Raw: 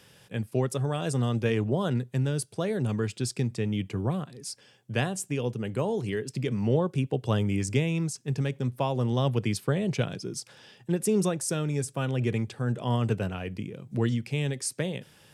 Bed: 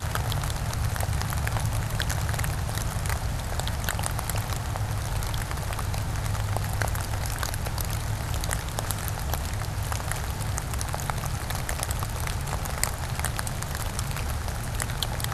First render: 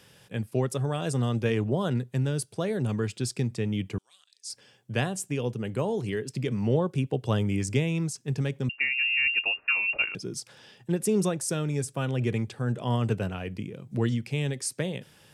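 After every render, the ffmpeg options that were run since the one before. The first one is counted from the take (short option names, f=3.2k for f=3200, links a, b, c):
-filter_complex "[0:a]asettb=1/sr,asplit=3[a][b][c];[a]atrim=end=3.984[d];[b]atrim=start=3.98:end=4.5,asetpts=PTS-STARTPTS,afade=t=in:d=0.004:c=qsin,afade=t=out:st=0.516:d=0.004:c=qsin,asuperpass=centerf=5800:order=4:qfactor=1.1[e];[c]atrim=start=4.496[f];[d][e]acrossfade=d=0.004:c1=hsin:c2=qsin[g];[g][f]acrossfade=d=0.004:c1=qsin:c2=hsin,asettb=1/sr,asplit=3[h][i][j];[h]atrim=end=8.694[k];[i]atrim=start=8.69:end=10.15,asetpts=PTS-STARTPTS,afade=t=in:d=0.004:c=qsin,afade=t=out:st=1.456:d=0.004:c=qsin,lowpass=f=2.5k:t=q:w=0.5098,lowpass=f=2.5k:t=q:w=0.6013,lowpass=f=2.5k:t=q:w=0.9,lowpass=f=2.5k:t=q:w=2.563,afreqshift=-2900[l];[j]atrim=start=10.146[m];[k][l]acrossfade=d=0.004:c1=hsin:c2=qsin[n];[n][m]acrossfade=d=0.004:c1=qsin:c2=hsin"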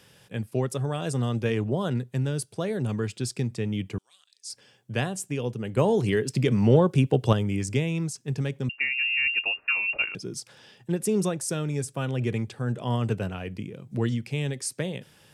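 -filter_complex "[0:a]asettb=1/sr,asplit=3[a][b][c];[a]atrim=end=5.774[d];[b]atrim=start=5.77:end=7.33,asetpts=PTS-STARTPTS,afade=t=in:d=0.004:c=qsin,afade=t=out:st=1.556:d=0.004:c=qsin,acontrast=67[e];[c]atrim=start=7.326[f];[d][e]acrossfade=d=0.004:c1=hsin:c2=qsin[g];[g][f]acrossfade=d=0.004:c1=qsin:c2=hsin"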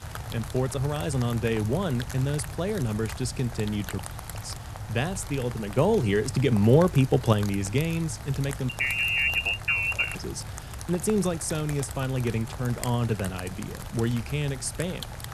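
-filter_complex "[1:a]volume=-8.5dB[a];[0:a][a]amix=inputs=2:normalize=0"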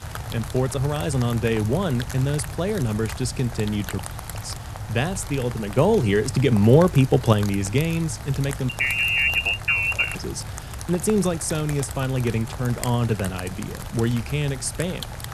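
-af "volume=4dB"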